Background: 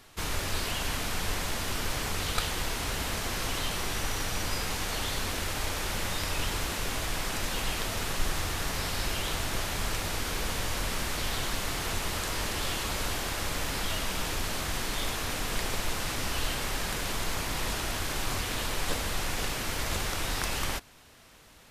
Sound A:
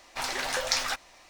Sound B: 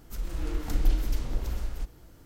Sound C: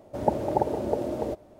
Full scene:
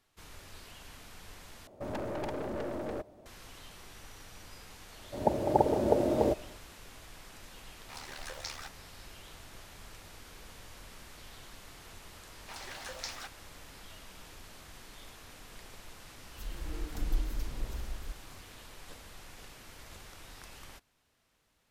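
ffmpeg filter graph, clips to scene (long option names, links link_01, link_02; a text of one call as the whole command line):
ffmpeg -i bed.wav -i cue0.wav -i cue1.wav -i cue2.wav -filter_complex "[3:a]asplit=2[link_01][link_02];[1:a]asplit=2[link_03][link_04];[0:a]volume=-19dB[link_05];[link_01]aeval=exprs='(tanh(39.8*val(0)+0.45)-tanh(0.45))/39.8':channel_layout=same[link_06];[link_02]dynaudnorm=framelen=160:gausssize=3:maxgain=11.5dB[link_07];[link_03]tremolo=f=74:d=0.75[link_08];[link_05]asplit=2[link_09][link_10];[link_09]atrim=end=1.674[link_11];[link_06]atrim=end=1.59,asetpts=PTS-STARTPTS,volume=-1.5dB[link_12];[link_10]atrim=start=3.256[link_13];[link_07]atrim=end=1.59,asetpts=PTS-STARTPTS,volume=-7.5dB,afade=type=in:duration=0.004:curve=hsin,afade=type=out:start_time=1.586:duration=0.004:curve=hsin,adelay=4990[link_14];[link_08]atrim=end=1.29,asetpts=PTS-STARTPTS,volume=-11.5dB,afade=type=in:duration=0.004:curve=hsin,afade=type=out:start_time=1.286:duration=0.004:curve=hsin,adelay=7730[link_15];[link_04]atrim=end=1.29,asetpts=PTS-STARTPTS,volume=-14dB,afade=type=in:duration=0.004:curve=hsin,afade=type=out:start_time=1.286:duration=0.004:curve=hsin,adelay=12320[link_16];[2:a]atrim=end=2.25,asetpts=PTS-STARTPTS,volume=-7.5dB,afade=type=in:duration=0.004:curve=hsin,afade=type=out:start_time=2.246:duration=0.004:curve=hsin,adelay=16270[link_17];[link_11][link_12]acrossfade=duration=0.004:curve1=hsin:curve2=hsin[link_18];[link_18][link_13]acrossfade=duration=0.004:curve1=hsin:curve2=hsin[link_19];[link_19][link_14][link_15][link_16][link_17]amix=inputs=5:normalize=0" out.wav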